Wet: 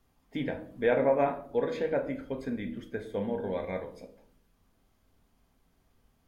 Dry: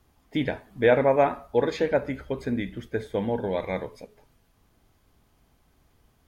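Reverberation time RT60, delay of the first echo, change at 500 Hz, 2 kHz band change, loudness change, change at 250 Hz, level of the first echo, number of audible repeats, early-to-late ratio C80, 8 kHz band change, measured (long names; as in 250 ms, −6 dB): 0.60 s, no echo audible, −5.0 dB, −7.0 dB, −5.5 dB, −5.0 dB, no echo audible, no echo audible, 17.5 dB, can't be measured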